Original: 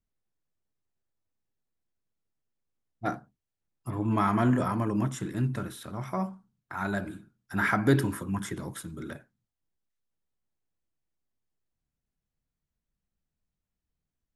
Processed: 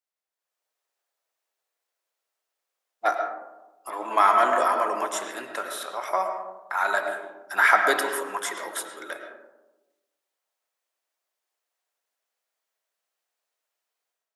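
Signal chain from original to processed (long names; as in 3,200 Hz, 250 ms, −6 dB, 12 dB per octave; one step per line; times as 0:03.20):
high-pass filter 540 Hz 24 dB per octave
automatic gain control gain up to 9.5 dB
on a send: high-frequency loss of the air 95 metres + convolution reverb RT60 1.1 s, pre-delay 70 ms, DRR 5 dB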